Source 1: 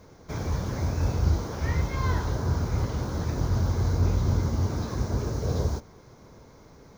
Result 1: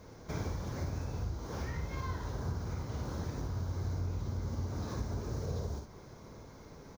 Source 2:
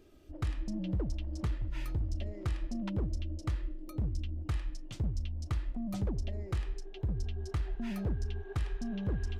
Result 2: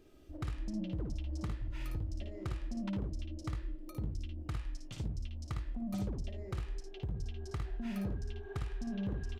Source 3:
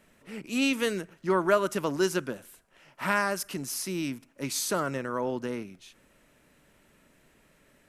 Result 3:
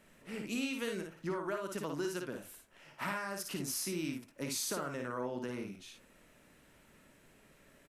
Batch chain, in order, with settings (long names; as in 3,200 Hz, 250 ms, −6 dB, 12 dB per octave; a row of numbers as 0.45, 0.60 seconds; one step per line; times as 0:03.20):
downward compressor 8 to 1, threshold −33 dBFS
on a send: ambience of single reflections 56 ms −4.5 dB, 75 ms −13 dB
on the sum: level −2 dB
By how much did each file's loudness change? −10.5, −3.5, −9.0 LU